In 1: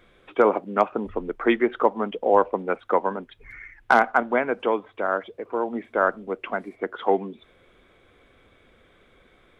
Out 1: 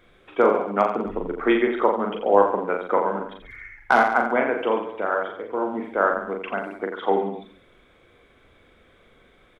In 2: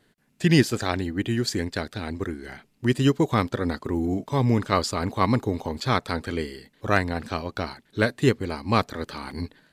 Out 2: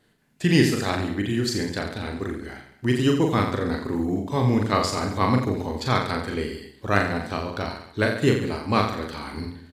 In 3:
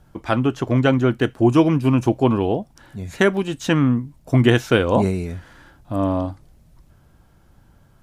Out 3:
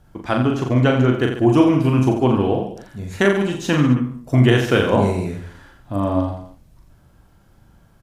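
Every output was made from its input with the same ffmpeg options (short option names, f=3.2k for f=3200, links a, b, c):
-af "aecho=1:1:40|86|138.9|199.7|269.7:0.631|0.398|0.251|0.158|0.1,volume=-1dB"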